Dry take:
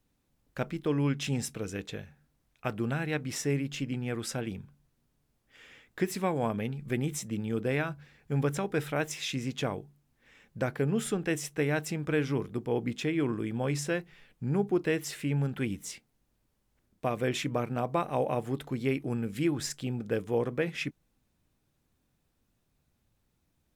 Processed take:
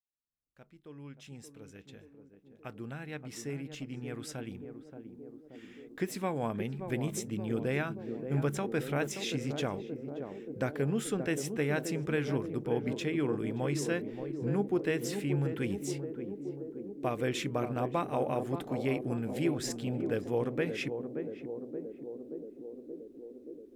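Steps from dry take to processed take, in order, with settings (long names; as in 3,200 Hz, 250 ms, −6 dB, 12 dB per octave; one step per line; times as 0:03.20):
fade in at the beginning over 7.32 s
feedback echo with a band-pass in the loop 577 ms, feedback 80%, band-pass 350 Hz, level −6 dB
level −2.5 dB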